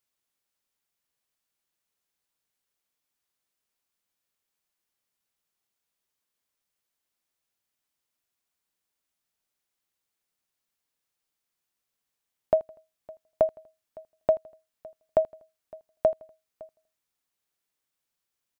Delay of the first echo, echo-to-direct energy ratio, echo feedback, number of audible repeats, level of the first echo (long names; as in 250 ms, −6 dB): 81 ms, −19.5 dB, 43%, 2, −20.5 dB